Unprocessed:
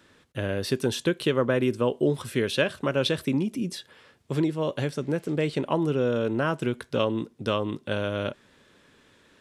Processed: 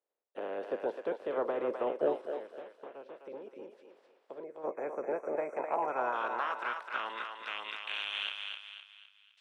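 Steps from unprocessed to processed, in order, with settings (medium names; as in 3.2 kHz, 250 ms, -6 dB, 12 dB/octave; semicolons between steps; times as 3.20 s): spectral peaks clipped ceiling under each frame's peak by 22 dB; gate with hold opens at -46 dBFS; 4.44–6.14 s: spectral selection erased 2.6–5.6 kHz; de-esser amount 90%; high-pass 260 Hz 12 dB/octave; 2.26–4.64 s: compression 3:1, threshold -42 dBFS, peak gain reduction 14 dB; band-pass sweep 500 Hz -> 3 kHz, 5.10–8.12 s; saturation -18.5 dBFS, distortion -24 dB; thinning echo 256 ms, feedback 43%, high-pass 680 Hz, level -4 dB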